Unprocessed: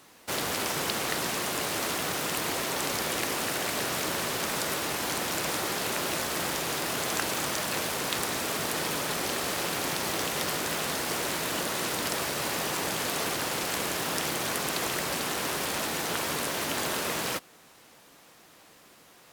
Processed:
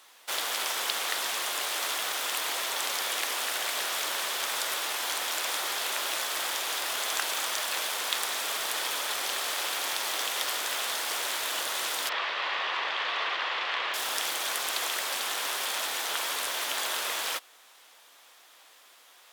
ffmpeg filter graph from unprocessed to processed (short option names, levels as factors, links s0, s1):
-filter_complex "[0:a]asettb=1/sr,asplit=3[s0][s1][s2];[s0]atrim=end=12.094[s3];[s1]atrim=start=12.09:end=13.94,asetpts=PTS-STARTPTS,afade=t=in:d=0.004:c=qsin,afade=t=out:st=1.846:d=0.004:c=qsin,highpass=230,equalizer=f=270:t=q:w=4:g=-4,equalizer=f=1100:t=q:w=4:g=6,equalizer=f=1900:t=q:w=4:g=5,equalizer=f=2700:t=q:w=4:g=3,lowpass=f=3900:w=0.5412,lowpass=f=3900:w=1.3066,aeval=exprs='val(0)+0.00447*(sin(2*PI*50*n/s)+sin(2*PI*2*50*n/s)/2+sin(2*PI*3*50*n/s)/3+sin(2*PI*4*50*n/s)/4+sin(2*PI*5*50*n/s)/5)':c=same[s4];[s2]atrim=start=13.936[s5];[s3][s4]acrossfade=d=0.004:c1=hsin:c2=qsin[s6];[s6][s5]acrossfade=d=0.004:c1=qsin:c2=hsin,highpass=740,equalizer=f=3400:w=4.7:g=5.5"